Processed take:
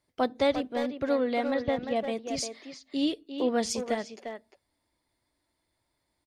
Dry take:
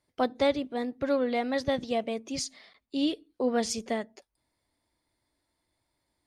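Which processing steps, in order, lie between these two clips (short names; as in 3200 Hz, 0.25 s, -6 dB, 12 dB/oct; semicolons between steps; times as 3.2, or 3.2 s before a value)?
1.54–1.96 air absorption 270 m; speakerphone echo 0.35 s, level -6 dB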